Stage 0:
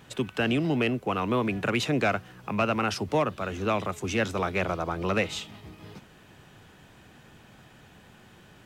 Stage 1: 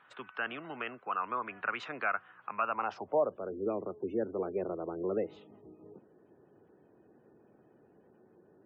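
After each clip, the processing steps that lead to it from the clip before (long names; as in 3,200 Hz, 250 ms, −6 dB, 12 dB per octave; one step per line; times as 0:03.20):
band-pass filter sweep 1,300 Hz → 390 Hz, 0:02.56–0:03.53
gate on every frequency bin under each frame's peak −30 dB strong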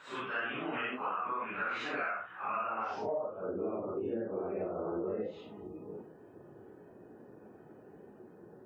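random phases in long frames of 200 ms
downward compressor 10 to 1, threshold −41 dBFS, peak gain reduction 18.5 dB
level +8.5 dB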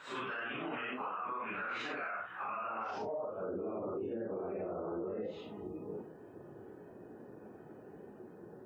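brickwall limiter −33.5 dBFS, peak gain reduction 10.5 dB
level +2 dB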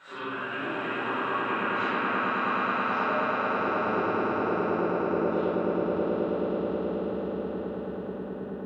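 echo that builds up and dies away 107 ms, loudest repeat 8, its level −7 dB
convolution reverb RT60 2.3 s, pre-delay 5 ms, DRR −11 dB
level −5 dB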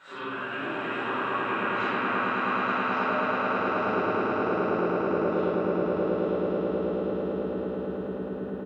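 single-tap delay 872 ms −8 dB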